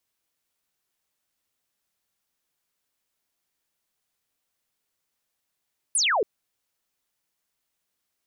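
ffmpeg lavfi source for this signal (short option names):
-f lavfi -i "aevalsrc='0.106*clip(t/0.002,0,1)*clip((0.28-t)/0.002,0,1)*sin(2*PI*11000*0.28/log(370/11000)*(exp(log(370/11000)*t/0.28)-1))':d=0.28:s=44100"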